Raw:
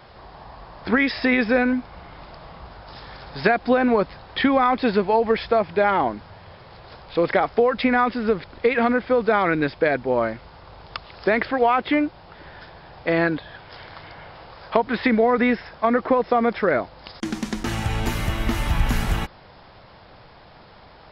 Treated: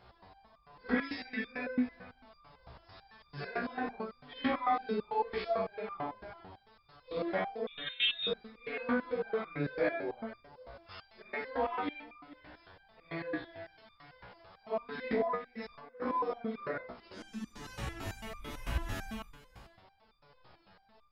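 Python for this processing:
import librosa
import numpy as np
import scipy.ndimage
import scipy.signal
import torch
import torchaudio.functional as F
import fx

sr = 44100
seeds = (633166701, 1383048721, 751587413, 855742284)

p1 = fx.phase_scramble(x, sr, seeds[0], window_ms=200)
p2 = fx.over_compress(p1, sr, threshold_db=-32.0, ratio=-1.0, at=(15.35, 16.02))
p3 = p2 + fx.echo_single(p2, sr, ms=438, db=-18.0, dry=0)
p4 = fx.freq_invert(p3, sr, carrier_hz=3900, at=(7.67, 8.27))
p5 = fx.resonator_held(p4, sr, hz=9.0, low_hz=62.0, high_hz=1200.0)
y = p5 * librosa.db_to_amplitude(-3.5)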